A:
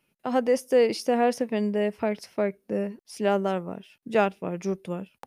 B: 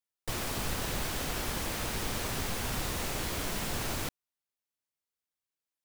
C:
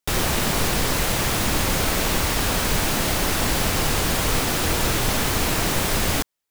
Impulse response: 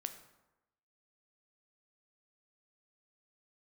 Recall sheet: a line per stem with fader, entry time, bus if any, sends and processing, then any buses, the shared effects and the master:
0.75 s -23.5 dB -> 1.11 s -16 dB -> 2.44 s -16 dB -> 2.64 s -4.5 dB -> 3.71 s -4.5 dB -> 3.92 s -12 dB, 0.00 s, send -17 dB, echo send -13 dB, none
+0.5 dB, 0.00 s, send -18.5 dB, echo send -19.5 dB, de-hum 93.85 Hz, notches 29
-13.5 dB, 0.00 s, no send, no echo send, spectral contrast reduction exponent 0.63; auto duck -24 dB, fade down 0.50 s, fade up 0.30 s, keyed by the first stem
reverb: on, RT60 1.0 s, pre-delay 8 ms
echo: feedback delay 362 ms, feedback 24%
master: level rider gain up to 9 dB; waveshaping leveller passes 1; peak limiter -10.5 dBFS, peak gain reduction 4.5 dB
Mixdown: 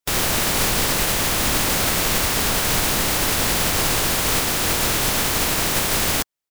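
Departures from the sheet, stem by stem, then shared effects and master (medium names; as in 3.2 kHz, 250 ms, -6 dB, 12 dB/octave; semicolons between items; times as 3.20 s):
stem A: muted; stem C -13.5 dB -> -2.5 dB; master: missing level rider gain up to 9 dB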